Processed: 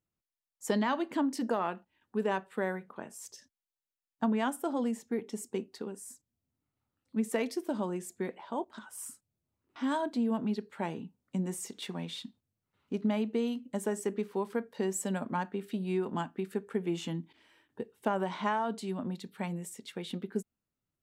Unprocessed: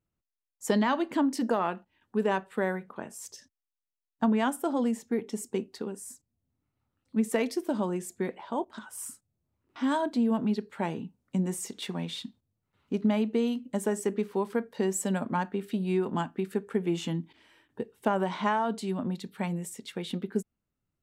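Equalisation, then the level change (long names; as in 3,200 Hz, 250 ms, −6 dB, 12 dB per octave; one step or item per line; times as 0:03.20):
low-shelf EQ 84 Hz −6.5 dB
−3.5 dB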